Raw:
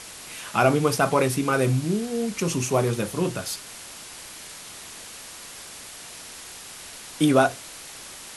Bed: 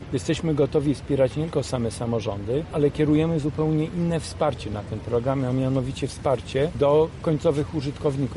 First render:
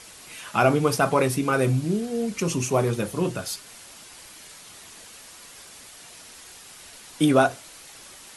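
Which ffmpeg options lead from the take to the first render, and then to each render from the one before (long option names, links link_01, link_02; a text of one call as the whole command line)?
ffmpeg -i in.wav -af "afftdn=noise_reduction=6:noise_floor=-41" out.wav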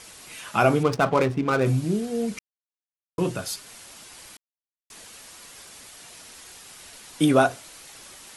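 ffmpeg -i in.wav -filter_complex "[0:a]asettb=1/sr,asplit=3[link_01][link_02][link_03];[link_01]atrim=end=0.834[link_04];[link_02]atrim=start=0.83:end=1.66,asetpts=PTS-STARTPTS,afade=type=in:duration=0.004:curve=qsin,afade=type=out:start_time=0.826:duration=0.004:curve=qsin,adynamicsmooth=sensitivity=3.5:basefreq=930[link_05];[link_03]atrim=start=1.656[link_06];[link_04][link_05]acrossfade=duration=0.004:curve1=hsin:curve2=qsin[link_07];[link_07][link_06]acrossfade=duration=0.004:curve1=qsin:curve2=hsin,asplit=5[link_08][link_09][link_10][link_11][link_12];[link_08]atrim=end=2.39,asetpts=PTS-STARTPTS,afade=type=out:start_time=2.386:duration=0.004:curve=hsin[link_13];[link_09]atrim=start=2.39:end=3.18,asetpts=PTS-STARTPTS,volume=0[link_14];[link_10]atrim=start=3.18:end=4.37,asetpts=PTS-STARTPTS,afade=type=in:duration=0.004:curve=hsin,afade=type=out:start_time=1.186:duration=0.004:curve=hsin[link_15];[link_11]atrim=start=4.37:end=4.9,asetpts=PTS-STARTPTS,volume=0[link_16];[link_12]atrim=start=4.9,asetpts=PTS-STARTPTS,afade=type=in:duration=0.004:curve=hsin[link_17];[link_13][link_14][link_15][link_16][link_17]concat=n=5:v=0:a=1" out.wav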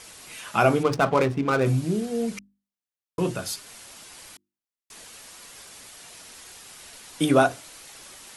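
ffmpeg -i in.wav -af "bandreject=frequency=50:width_type=h:width=6,bandreject=frequency=100:width_type=h:width=6,bandreject=frequency=150:width_type=h:width=6,bandreject=frequency=200:width_type=h:width=6,bandreject=frequency=250:width_type=h:width=6,bandreject=frequency=300:width_type=h:width=6,bandreject=frequency=350:width_type=h:width=6" out.wav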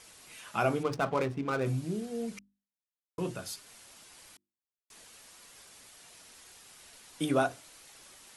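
ffmpeg -i in.wav -af "volume=-9dB" out.wav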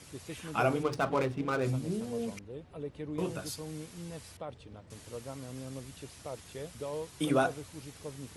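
ffmpeg -i in.wav -i bed.wav -filter_complex "[1:a]volume=-19.5dB[link_01];[0:a][link_01]amix=inputs=2:normalize=0" out.wav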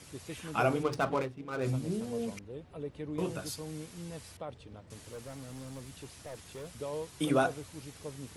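ffmpeg -i in.wav -filter_complex "[0:a]asettb=1/sr,asplit=3[link_01][link_02][link_03];[link_01]atrim=end=4.974[link_04];[link_02]atrim=start=4.97:end=6.71,asetpts=PTS-STARTPTS,afade=type=in:duration=0.004:curve=qsin,afade=type=out:start_time=1.736:duration=0.004:curve=qsin,asoftclip=type=hard:threshold=-39.5dB[link_05];[link_03]atrim=start=6.706[link_06];[link_04][link_05]acrossfade=duration=0.004:curve1=hsin:curve2=qsin[link_07];[link_07][link_06]acrossfade=duration=0.004:curve1=qsin:curve2=hsin,asplit=3[link_08][link_09][link_10];[link_08]atrim=end=1.31,asetpts=PTS-STARTPTS,afade=type=out:start_time=1.05:duration=0.26:curve=qsin:silence=0.316228[link_11];[link_09]atrim=start=1.31:end=1.49,asetpts=PTS-STARTPTS,volume=-10dB[link_12];[link_10]atrim=start=1.49,asetpts=PTS-STARTPTS,afade=type=in:duration=0.26:curve=qsin:silence=0.316228[link_13];[link_11][link_12][link_13]concat=n=3:v=0:a=1" out.wav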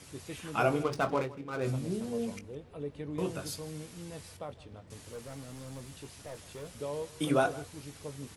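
ffmpeg -i in.wav -filter_complex "[0:a]asplit=2[link_01][link_02];[link_02]adelay=21,volume=-11dB[link_03];[link_01][link_03]amix=inputs=2:normalize=0,aecho=1:1:160:0.106" out.wav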